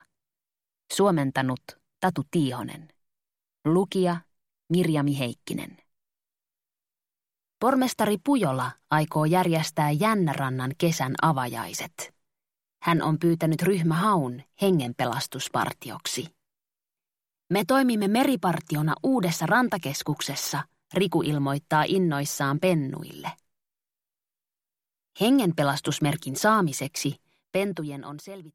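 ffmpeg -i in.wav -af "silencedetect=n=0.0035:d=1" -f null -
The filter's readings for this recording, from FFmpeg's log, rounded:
silence_start: 5.79
silence_end: 7.62 | silence_duration: 1.82
silence_start: 16.29
silence_end: 17.50 | silence_duration: 1.21
silence_start: 23.39
silence_end: 25.16 | silence_duration: 1.77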